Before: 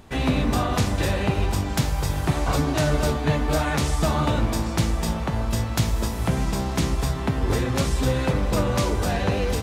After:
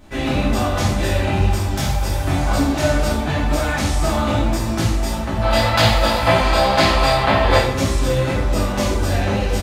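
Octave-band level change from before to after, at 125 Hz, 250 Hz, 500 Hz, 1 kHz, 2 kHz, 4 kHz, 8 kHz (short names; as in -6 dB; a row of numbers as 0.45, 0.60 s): +3.0, +3.5, +7.0, +8.0, +8.5, +8.5, +3.5 dB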